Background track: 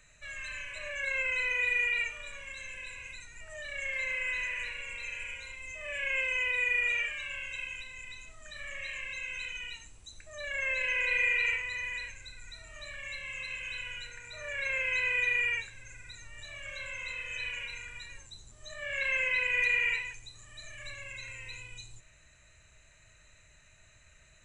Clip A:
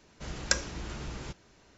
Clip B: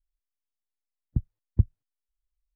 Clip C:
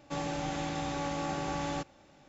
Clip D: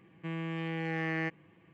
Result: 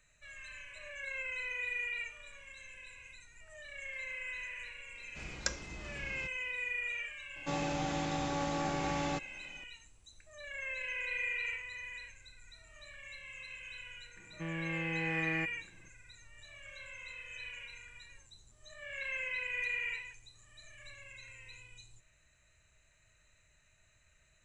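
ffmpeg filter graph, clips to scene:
ffmpeg -i bed.wav -i cue0.wav -i cue1.wav -i cue2.wav -i cue3.wav -filter_complex "[0:a]volume=-8.5dB[link_01];[1:a]atrim=end=1.77,asetpts=PTS-STARTPTS,volume=-8dB,afade=type=in:duration=0.004:curve=hsin,afade=type=out:start_time=1.766:duration=0.004:curve=hsin,adelay=4950[link_02];[3:a]atrim=end=2.28,asetpts=PTS-STARTPTS,volume=-0.5dB,afade=type=in:duration=0.004:curve=hsin,afade=type=out:start_time=2.276:duration=0.004:curve=hsin,adelay=7360[link_03];[4:a]atrim=end=1.73,asetpts=PTS-STARTPTS,volume=-3dB,afade=type=in:duration=0.004:curve=hsin,afade=type=out:start_time=1.726:duration=0.004:curve=hsin,adelay=14160[link_04];[link_01][link_02][link_03][link_04]amix=inputs=4:normalize=0" out.wav

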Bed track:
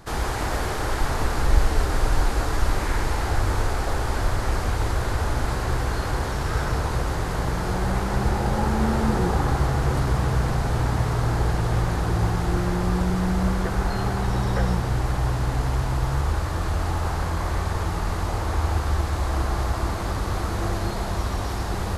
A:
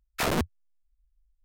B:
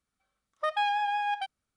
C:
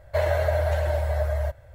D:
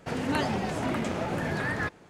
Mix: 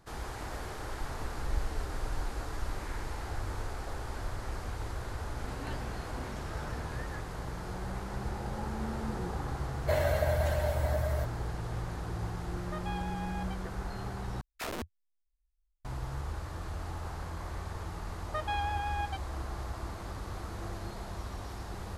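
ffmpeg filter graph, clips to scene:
ffmpeg -i bed.wav -i cue0.wav -i cue1.wav -i cue2.wav -i cue3.wav -filter_complex "[2:a]asplit=2[link_01][link_02];[0:a]volume=-14dB[link_03];[3:a]highshelf=frequency=4300:gain=8.5[link_04];[1:a]equalizer=frequency=150:width=2.1:gain=-9.5[link_05];[link_03]asplit=2[link_06][link_07];[link_06]atrim=end=14.414[link_08];[link_05]atrim=end=1.44,asetpts=PTS-STARTPTS,volume=-10.5dB[link_09];[link_07]atrim=start=15.846[link_10];[4:a]atrim=end=2.09,asetpts=PTS-STARTPTS,volume=-16dB,afade=type=in:duration=0.004:curve=hsin,afade=type=out:start_time=2.086:duration=0.004:curve=hsin,adelay=5320[link_11];[link_04]atrim=end=1.74,asetpts=PTS-STARTPTS,volume=-6dB,afade=type=in:duration=0.004:curve=hsin,afade=type=out:start_time=1.736:duration=0.004:curve=hsin,adelay=9740[link_12];[link_01]atrim=end=1.76,asetpts=PTS-STARTPTS,volume=-13.5dB,afade=type=in:duration=0.004:curve=hsin,afade=type=out:start_time=1.756:duration=0.004:curve=hsin,adelay=12090[link_13];[link_02]atrim=end=1.76,asetpts=PTS-STARTPTS,volume=-6.5dB,afade=type=in:duration=0.004:curve=hsin,afade=type=out:start_time=1.756:duration=0.004:curve=hsin,adelay=17710[link_14];[link_08][link_09]acrossfade=duration=0.004:curve1=hsin:curve2=hsin[link_15];[link_15][link_10]acrossfade=duration=0.004:curve1=hsin:curve2=hsin[link_16];[link_16][link_11][link_12][link_13][link_14]amix=inputs=5:normalize=0" out.wav

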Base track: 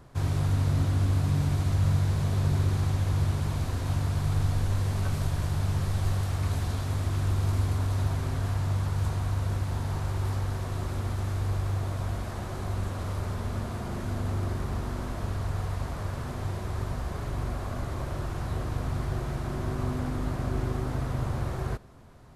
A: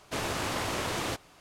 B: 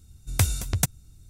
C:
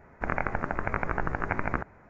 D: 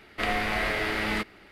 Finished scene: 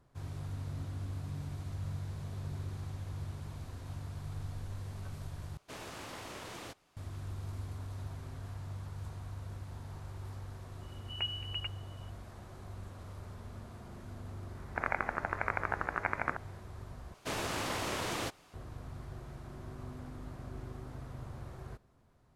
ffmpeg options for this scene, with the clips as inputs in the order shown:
ffmpeg -i bed.wav -i cue0.wav -i cue1.wav -i cue2.wav -filter_complex "[1:a]asplit=2[link_01][link_02];[0:a]volume=-15dB[link_03];[2:a]lowpass=frequency=2600:width_type=q:width=0.5098,lowpass=frequency=2600:width_type=q:width=0.6013,lowpass=frequency=2600:width_type=q:width=0.9,lowpass=frequency=2600:width_type=q:width=2.563,afreqshift=-3000[link_04];[3:a]highpass=frequency=710:poles=1[link_05];[link_03]asplit=3[link_06][link_07][link_08];[link_06]atrim=end=5.574[link_09];[link_01]atrim=end=1.4,asetpts=PTS-STARTPTS,volume=-13.5dB[link_10];[link_07]atrim=start=6.966:end=17.144[link_11];[link_02]atrim=end=1.4,asetpts=PTS-STARTPTS,volume=-4dB[link_12];[link_08]atrim=start=18.536[link_13];[link_04]atrim=end=1.29,asetpts=PTS-STARTPTS,volume=-14.5dB,afade=type=in:duration=0.004:curve=hsin,afade=type=out:start_time=1.286:duration=0.004:curve=hsin,adelay=10810[link_14];[link_05]atrim=end=2.09,asetpts=PTS-STARTPTS,volume=-1.5dB,afade=type=in:duration=0.004:curve=hsin,afade=type=out:start_time=2.086:duration=0.004:curve=hsin,adelay=14540[link_15];[link_09][link_10]acrossfade=duration=0.004:curve1=hsin:curve2=hsin[link_16];[link_16][link_11]acrossfade=duration=0.004:curve1=hsin:curve2=hsin[link_17];[link_17][link_12]acrossfade=duration=0.004:curve1=hsin:curve2=hsin[link_18];[link_18][link_13]acrossfade=duration=0.004:curve1=hsin:curve2=hsin[link_19];[link_19][link_14][link_15]amix=inputs=3:normalize=0" out.wav

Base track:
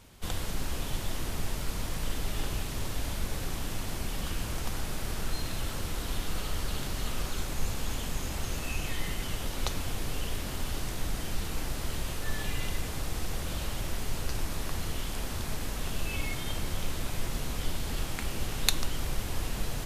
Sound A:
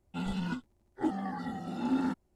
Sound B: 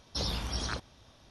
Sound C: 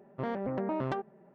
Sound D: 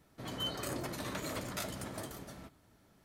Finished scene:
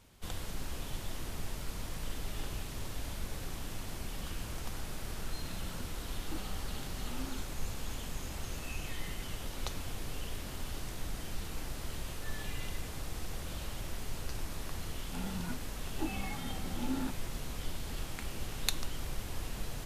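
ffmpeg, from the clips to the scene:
ffmpeg -i bed.wav -i cue0.wav -filter_complex "[1:a]asplit=2[link_01][link_02];[0:a]volume=-6.5dB[link_03];[link_01]atrim=end=2.35,asetpts=PTS-STARTPTS,volume=-16dB,afade=type=in:duration=0.004:curve=hsin,afade=type=out:start_time=2.346:duration=0.004:curve=hsin,adelay=5280[link_04];[link_02]atrim=end=2.35,asetpts=PTS-STARTPTS,volume=-7dB,afade=type=in:duration=0.004:curve=hsin,afade=type=out:start_time=2.346:duration=0.004:curve=hsin,adelay=14980[link_05];[link_03][link_04][link_05]amix=inputs=3:normalize=0" out.wav

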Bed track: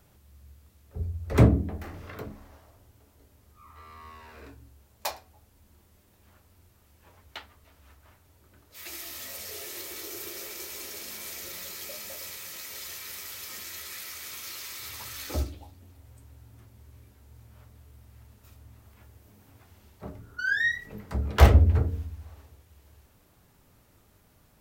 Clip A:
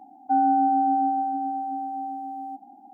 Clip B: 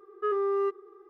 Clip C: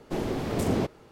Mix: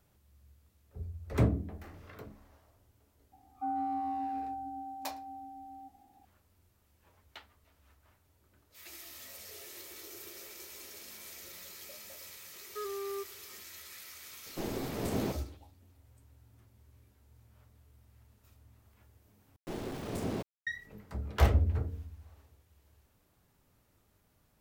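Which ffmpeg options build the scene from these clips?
ffmpeg -i bed.wav -i cue0.wav -i cue1.wav -i cue2.wav -filter_complex "[3:a]asplit=2[link_01][link_02];[0:a]volume=-9dB[link_03];[link_01]asplit=2[link_04][link_05];[link_05]adelay=15,volume=-11dB[link_06];[link_04][link_06]amix=inputs=2:normalize=0[link_07];[link_02]aeval=exprs='val(0)*gte(abs(val(0)),0.0178)':channel_layout=same[link_08];[link_03]asplit=2[link_09][link_10];[link_09]atrim=end=19.564[link_11];[link_08]atrim=end=1.11,asetpts=PTS-STARTPTS,volume=-9.5dB[link_12];[link_10]atrim=start=20.666[link_13];[1:a]atrim=end=2.93,asetpts=PTS-STARTPTS,volume=-14dB,afade=type=in:duration=0.004:curve=hsin,afade=type=out:start_time=2.926:duration=0.004:curve=hsin,adelay=3320[link_14];[2:a]atrim=end=1.09,asetpts=PTS-STARTPTS,volume=-11.5dB,afade=type=in:duration=0.004:curve=hsin,afade=type=out:start_time=1.086:duration=0.004:curve=hsin,adelay=12530[link_15];[link_07]atrim=end=1.11,asetpts=PTS-STARTPTS,volume=-7.5dB,afade=type=in:duration=0.004:curve=hsin,afade=type=out:start_time=1.106:duration=0.004:curve=hsin,adelay=14460[link_16];[link_11][link_12]acrossfade=duration=0.004:curve1=hsin:curve2=hsin[link_17];[link_17][link_13]acrossfade=duration=0.004:curve1=hsin:curve2=hsin[link_18];[link_18][link_14][link_15][link_16]amix=inputs=4:normalize=0" out.wav

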